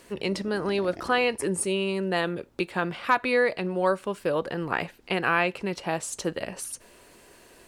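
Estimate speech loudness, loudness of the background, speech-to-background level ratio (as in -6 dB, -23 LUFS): -27.5 LUFS, -46.0 LUFS, 18.5 dB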